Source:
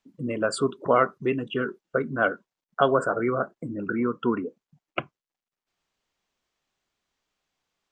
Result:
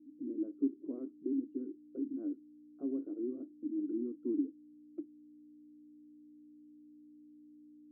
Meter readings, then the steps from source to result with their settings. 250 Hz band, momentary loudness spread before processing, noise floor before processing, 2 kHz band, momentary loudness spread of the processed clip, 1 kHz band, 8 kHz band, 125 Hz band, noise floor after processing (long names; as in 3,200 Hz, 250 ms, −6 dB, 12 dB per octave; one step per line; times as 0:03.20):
−6.0 dB, 12 LU, below −85 dBFS, below −40 dB, 22 LU, below −40 dB, can't be measured, below −30 dB, −58 dBFS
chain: mains hum 60 Hz, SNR 15 dB
flat-topped band-pass 300 Hz, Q 5.3
level +1 dB